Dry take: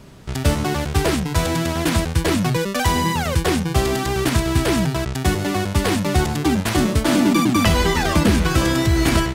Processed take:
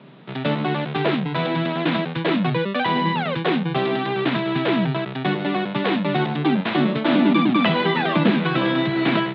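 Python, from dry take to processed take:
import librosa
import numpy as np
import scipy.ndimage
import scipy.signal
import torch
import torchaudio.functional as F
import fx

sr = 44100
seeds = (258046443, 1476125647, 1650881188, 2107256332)

y = scipy.signal.sosfilt(scipy.signal.cheby1(5, 1.0, [140.0, 3800.0], 'bandpass', fs=sr, output='sos'), x)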